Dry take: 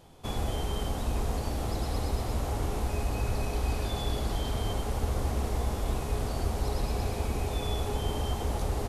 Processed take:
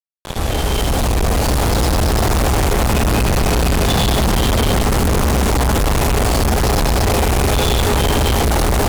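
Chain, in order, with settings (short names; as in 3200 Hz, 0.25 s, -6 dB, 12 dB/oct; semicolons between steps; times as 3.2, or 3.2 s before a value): opening faded in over 2.41 s; 2.9–5.5 bell 180 Hz +7 dB 0.72 oct; fuzz box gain 48 dB, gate -48 dBFS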